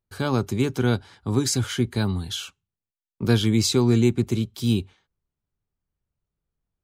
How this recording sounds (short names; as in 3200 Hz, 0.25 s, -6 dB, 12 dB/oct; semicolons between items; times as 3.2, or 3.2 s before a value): noise floor -91 dBFS; spectral tilt -5.5 dB/oct